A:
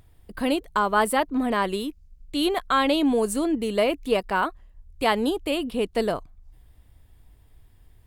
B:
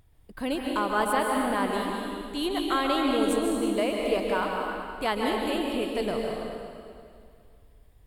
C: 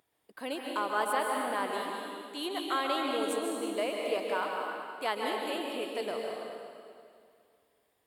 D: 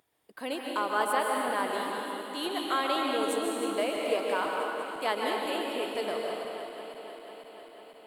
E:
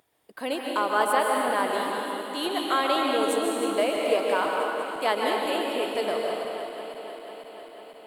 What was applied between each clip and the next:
plate-style reverb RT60 2.3 s, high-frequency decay 0.9×, pre-delay 0.12 s, DRR -0.5 dB; gain -6 dB
HPF 380 Hz 12 dB/oct; gain -4 dB
regenerating reverse delay 0.248 s, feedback 81%, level -13 dB; gain +2 dB
bell 620 Hz +2 dB; gain +4 dB

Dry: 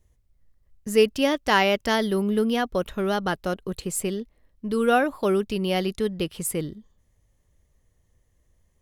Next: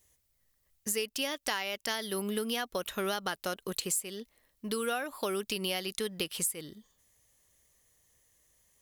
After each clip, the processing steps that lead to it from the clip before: tilt +3.5 dB/oct; compressor 16:1, threshold -29 dBFS, peak gain reduction 17.5 dB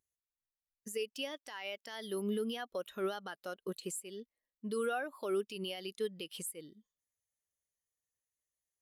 low shelf 130 Hz -8 dB; limiter -25.5 dBFS, peak gain reduction 10 dB; spectral expander 1.5:1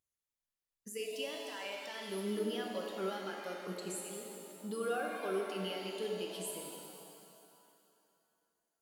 shimmer reverb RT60 2.6 s, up +7 st, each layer -8 dB, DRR 0 dB; gain -3 dB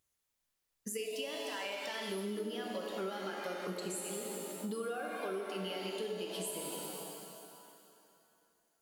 compressor 6:1, threshold -45 dBFS, peak gain reduction 13.5 dB; gain +8.5 dB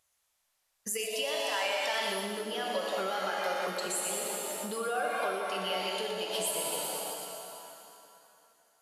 brick-wall FIR low-pass 14000 Hz; resonant low shelf 470 Hz -8.5 dB, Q 1.5; split-band echo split 2200 Hz, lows 0.174 s, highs 0.12 s, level -8 dB; gain +8 dB

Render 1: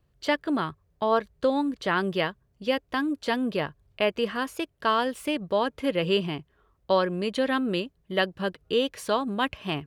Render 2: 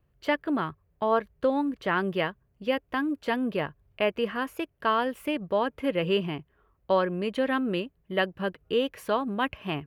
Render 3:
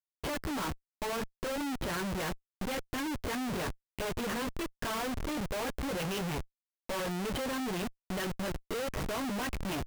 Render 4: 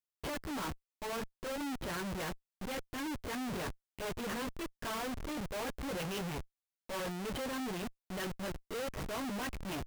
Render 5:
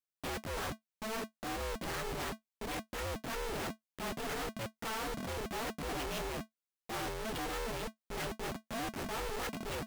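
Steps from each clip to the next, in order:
band shelf 5800 Hz -9 dB; gain -1 dB
chorus voices 4, 0.88 Hz, delay 14 ms, depth 2.8 ms; Schmitt trigger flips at -43.5 dBFS; gain -2 dB
limiter -33.5 dBFS, peak gain reduction 5.5 dB; gain -3 dB
polarity switched at an audio rate 220 Hz

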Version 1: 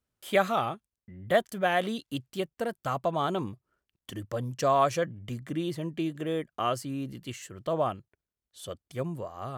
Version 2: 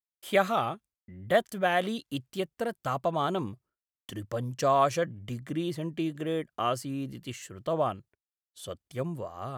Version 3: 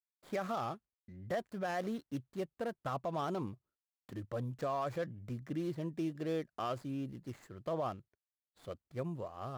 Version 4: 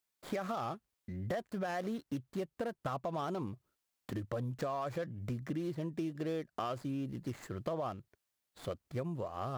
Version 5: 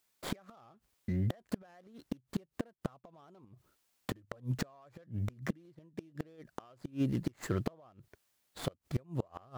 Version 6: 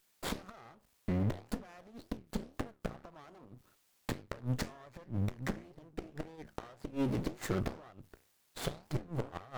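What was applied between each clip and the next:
expander -53 dBFS
median filter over 15 samples; limiter -23.5 dBFS, peak gain reduction 10 dB; gain -5 dB
compressor 4:1, threshold -46 dBFS, peak gain reduction 12 dB; gain +10 dB
flipped gate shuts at -30 dBFS, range -30 dB; gain +9 dB
flange 1.9 Hz, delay 9.2 ms, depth 8.9 ms, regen -77%; half-wave rectifier; tube stage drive 29 dB, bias 0.65; gain +16.5 dB

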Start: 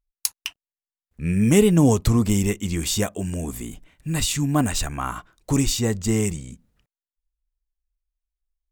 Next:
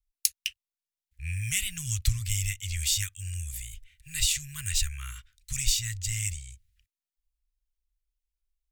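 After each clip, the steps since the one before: inverse Chebyshev band-stop 270–700 Hz, stop band 70 dB; gain -1 dB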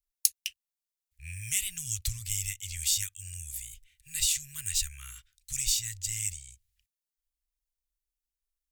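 high shelf 3200 Hz +11.5 dB; gain -9.5 dB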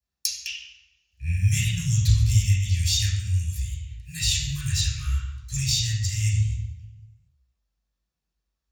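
reverb RT60 1.2 s, pre-delay 3 ms, DRR -8 dB; gain -6.5 dB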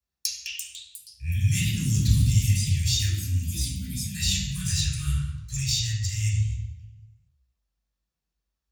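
echoes that change speed 0.405 s, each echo +5 st, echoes 3, each echo -6 dB; gain -2 dB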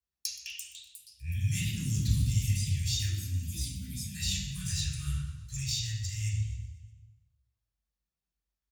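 feedback echo 0.124 s, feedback 58%, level -17.5 dB; gain -7 dB

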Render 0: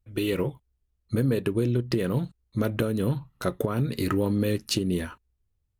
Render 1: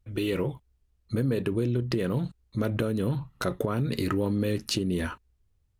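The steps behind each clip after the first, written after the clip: high shelf 11000 Hz -7.5 dB; in parallel at -2.5 dB: negative-ratio compressor -34 dBFS, ratio -1; on the sum: gain -3.5 dB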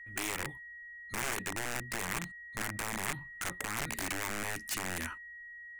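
whine 1900 Hz -44 dBFS; wrapped overs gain 21.5 dB; ten-band EQ 125 Hz -8 dB, 500 Hz -8 dB, 2000 Hz +7 dB, 4000 Hz -6 dB, 8000 Hz +8 dB; gain -7.5 dB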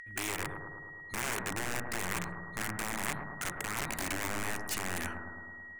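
upward compressor, threshold -51 dBFS; analogue delay 0.108 s, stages 1024, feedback 69%, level -5 dB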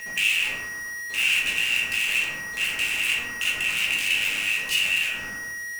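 resonant high-pass 2700 Hz, resonance Q 12; in parallel at -11 dB: Schmitt trigger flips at -47 dBFS; on the sum: shoebox room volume 140 m³, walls mixed, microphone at 1.4 m

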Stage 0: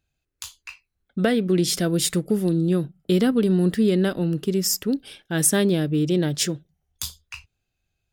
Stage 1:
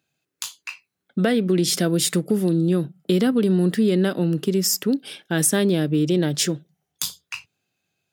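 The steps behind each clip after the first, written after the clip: in parallel at -1 dB: limiter -14.5 dBFS, peak gain reduction 7.5 dB; on the sum: HPF 140 Hz 24 dB/oct; compressor 1.5:1, threshold -22 dBFS, peak gain reduction 4.5 dB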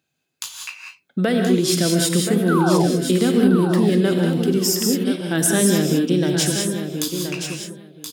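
painted sound fall, 2.48–2.95, 220–1600 Hz -24 dBFS; feedback echo 1.026 s, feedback 15%, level -8 dB; reverb, pre-delay 3 ms, DRR 2 dB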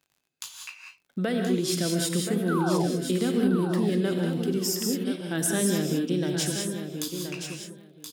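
crackle 49/s -43 dBFS; gain -8 dB

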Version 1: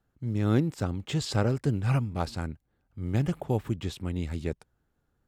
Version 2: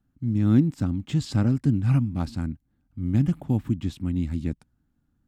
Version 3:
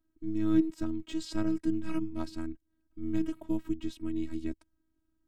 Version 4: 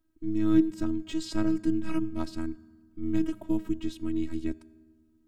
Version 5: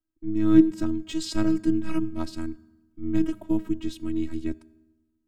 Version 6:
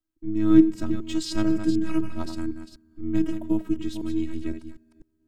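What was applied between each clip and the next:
resonant low shelf 340 Hz +7 dB, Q 3; gain -3.5 dB
robotiser 320 Hz; gain -3 dB
reverb RT60 1.5 s, pre-delay 4 ms, DRR 18.5 dB; gain +3.5 dB
three-band expander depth 40%; gain +3 dB
reverse delay 0.251 s, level -8.5 dB

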